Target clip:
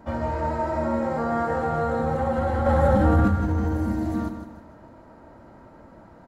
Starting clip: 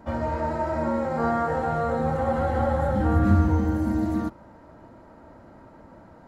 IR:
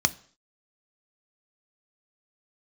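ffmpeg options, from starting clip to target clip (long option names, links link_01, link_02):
-filter_complex "[0:a]alimiter=limit=-17dB:level=0:latency=1:release=14,asettb=1/sr,asplit=3[link_01][link_02][link_03];[link_01]atrim=end=2.664[link_04];[link_02]atrim=start=2.66:end=3.28,asetpts=PTS-STARTPTS,afade=type=in:duration=0.004:curve=qsin,afade=type=out:start_time=0.616:duration=0.004:curve=qsin,acontrast=39[link_05];[link_03]atrim=start=3.276[link_06];[link_04][link_05]acrossfade=duration=0.004:curve1=hsin:curve2=qsin[link_07];[link_07][link_06]acrossfade=duration=0.004:curve1=qsin:curve2=hsin,aecho=1:1:155|310|465|620|775:0.355|0.145|0.0596|0.0245|0.01"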